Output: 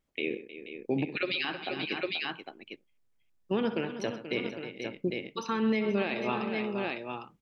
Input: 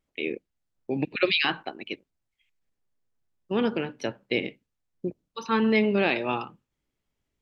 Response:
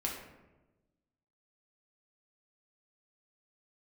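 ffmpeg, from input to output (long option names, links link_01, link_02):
-af "aecho=1:1:64|127|313|482|804:0.178|0.15|0.178|0.224|0.316,alimiter=limit=-19dB:level=0:latency=1:release=378"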